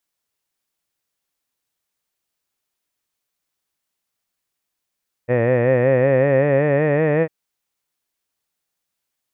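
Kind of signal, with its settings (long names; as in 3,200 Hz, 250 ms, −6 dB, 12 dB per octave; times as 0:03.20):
vowel by formant synthesis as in head, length 2.00 s, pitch 118 Hz, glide +5 semitones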